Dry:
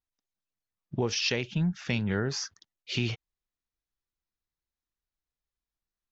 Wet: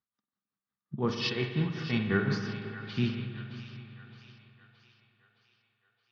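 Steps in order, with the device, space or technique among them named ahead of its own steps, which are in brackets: 1.09–2.25 s: comb 2.7 ms, depth 64%; combo amplifier with spring reverb and tremolo (spring tank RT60 3.4 s, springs 56 ms, chirp 20 ms, DRR 8 dB; tremolo 5.6 Hz, depth 78%; cabinet simulation 93–4500 Hz, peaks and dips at 140 Hz +8 dB, 210 Hz +10 dB, 680 Hz -4 dB, 1.2 kHz +10 dB, 1.7 kHz +3 dB, 2.6 kHz -6 dB); two-band feedback delay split 600 Hz, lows 261 ms, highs 618 ms, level -13 dB; spring tank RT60 1.2 s, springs 46 ms, chirp 20 ms, DRR 6.5 dB

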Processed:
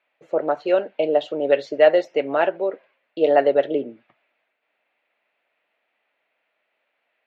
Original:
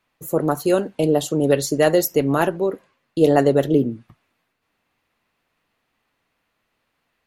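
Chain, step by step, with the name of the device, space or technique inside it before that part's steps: phone earpiece (cabinet simulation 500–3300 Hz, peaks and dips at 610 Hz +7 dB, 1.1 kHz -7 dB, 2.3 kHz +4 dB)

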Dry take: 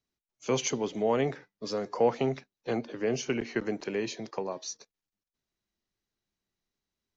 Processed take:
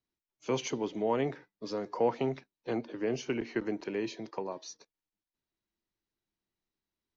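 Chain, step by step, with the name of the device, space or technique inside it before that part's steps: inside a cardboard box (low-pass 5.3 kHz 12 dB/octave; small resonant body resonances 320/940 Hz, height 6 dB); trim -4 dB

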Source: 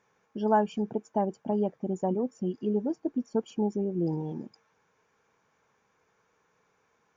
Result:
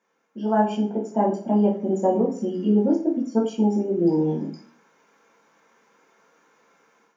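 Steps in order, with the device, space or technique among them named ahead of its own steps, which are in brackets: far laptop microphone (reverberation RT60 0.45 s, pre-delay 3 ms, DRR -4 dB; high-pass 190 Hz 24 dB/octave; level rider gain up to 11 dB); trim -6 dB

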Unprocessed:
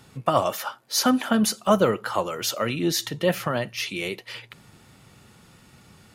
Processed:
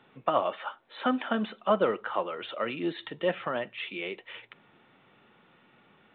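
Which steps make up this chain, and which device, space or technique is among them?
telephone (band-pass 270–3400 Hz; trim -4.5 dB; µ-law 64 kbps 8 kHz)

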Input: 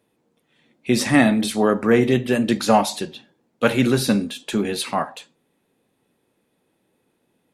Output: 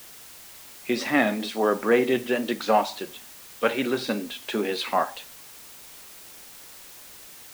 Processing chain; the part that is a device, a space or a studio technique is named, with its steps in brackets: dictaphone (band-pass 330–4100 Hz; level rider gain up to 11.5 dB; wow and flutter; white noise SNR 18 dB); trim -7.5 dB

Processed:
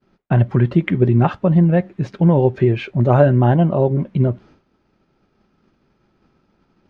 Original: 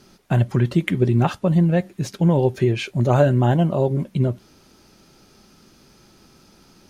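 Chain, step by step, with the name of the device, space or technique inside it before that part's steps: hearing-loss simulation (low-pass 2.2 kHz 12 dB/octave; expander -44 dBFS); trim +3.5 dB

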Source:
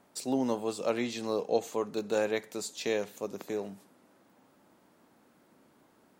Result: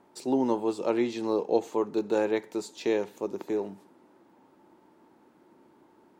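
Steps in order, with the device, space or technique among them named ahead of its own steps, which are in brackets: inside a helmet (treble shelf 5.4 kHz -9 dB; small resonant body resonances 350/890 Hz, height 10 dB, ringing for 30 ms)

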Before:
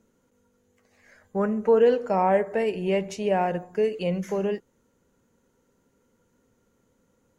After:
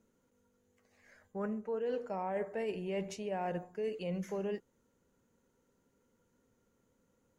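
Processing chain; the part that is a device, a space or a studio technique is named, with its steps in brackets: compression on the reversed sound (reverse; compression 10:1, threshold -26 dBFS, peak gain reduction 12 dB; reverse); trim -7 dB

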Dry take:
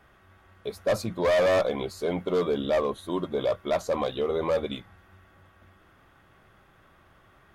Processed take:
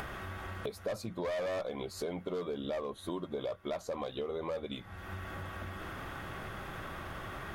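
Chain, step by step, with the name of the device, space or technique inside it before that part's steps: upward and downward compression (upward compressor, threshold -29 dBFS; compression 6:1, threshold -36 dBFS, peak gain reduction 14.5 dB); trim +1 dB

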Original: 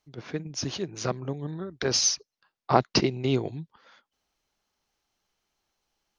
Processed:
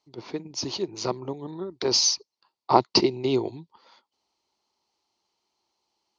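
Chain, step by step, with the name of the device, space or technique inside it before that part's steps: car door speaker (cabinet simulation 100–8800 Hz, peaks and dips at 150 Hz -7 dB, 360 Hz +7 dB, 930 Hz +10 dB, 1.6 kHz -10 dB, 4.5 kHz +9 dB); trim -1 dB

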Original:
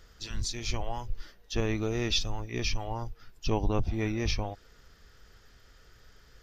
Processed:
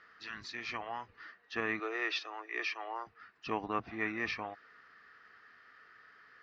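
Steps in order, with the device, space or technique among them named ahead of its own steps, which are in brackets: 1.79–3.07 s: steep high-pass 320 Hz 48 dB/octave; phone earpiece (cabinet simulation 360–3700 Hz, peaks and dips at 380 Hz -6 dB, 550 Hz -9 dB, 870 Hz -4 dB, 1.2 kHz +8 dB, 1.8 kHz +9 dB, 3.4 kHz -9 dB)

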